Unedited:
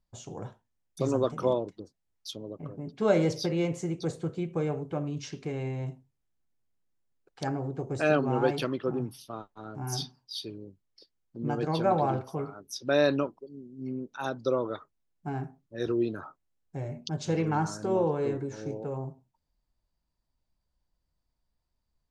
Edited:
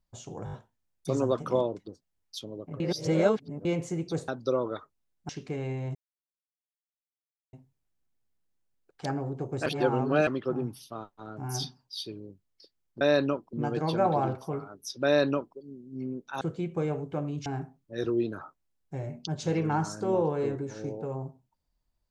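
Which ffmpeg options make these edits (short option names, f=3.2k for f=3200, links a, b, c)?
-filter_complex "[0:a]asplit=16[a][b][c][d][e][f][g][h][i][j][k][l][m][n][o][p];[a]atrim=end=0.472[q];[b]atrim=start=0.448:end=0.472[r];[c]atrim=start=0.448:end=0.472[s];[d]atrim=start=0.448:end=0.472[t];[e]atrim=start=0.448:end=2.722[u];[f]atrim=start=2.718:end=3.572,asetpts=PTS-STARTPTS,areverse[v];[g]atrim=start=3.568:end=4.202[w];[h]atrim=start=14.268:end=15.282[x];[i]atrim=start=5.248:end=5.91,asetpts=PTS-STARTPTS,afade=t=out:st=0.658:d=0.004:c=hsin,apad=pad_dur=1.58[y];[j]atrim=start=5.91:end=8.042,asetpts=PTS-STARTPTS,afade=t=in:d=0.004:c=hsin[z];[k]atrim=start=8.038:end=8.652,asetpts=PTS-STARTPTS,areverse[aa];[l]atrim=start=8.648:end=11.392[ab];[m]atrim=start=12.908:end=13.432[ac];[n]atrim=start=11.388:end=14.272[ad];[o]atrim=start=4.198:end=5.252[ae];[p]atrim=start=15.278[af];[q][r]acrossfade=d=0.004:c1=hsin:c2=hsin[ag];[ag][s]acrossfade=d=0.004:c1=hsin:c2=hsin[ah];[ah][t]acrossfade=d=0.004:c1=hsin:c2=hsin[ai];[ai][u]acrossfade=d=0.004:c1=hsin:c2=hsin[aj];[aj][v]acrossfade=d=0.004:c1=hsin:c2=hsin[ak];[ak][w]acrossfade=d=0.004:c1=hsin:c2=hsin[al];[al][x]acrossfade=d=0.004:c1=hsin:c2=hsin[am];[y][z]concat=n=2:v=0:a=1[an];[am][an]acrossfade=d=0.004:c1=hsin:c2=hsin[ao];[ao][aa]acrossfade=d=0.004:c1=hsin:c2=hsin[ap];[ap][ab]acrossfade=d=0.004:c1=hsin:c2=hsin[aq];[aq][ac]acrossfade=d=0.004:c1=hsin:c2=hsin[ar];[ar][ad]acrossfade=d=0.004:c1=hsin:c2=hsin[as];[as][ae]acrossfade=d=0.004:c1=hsin:c2=hsin[at];[at][af]acrossfade=d=0.004:c1=hsin:c2=hsin"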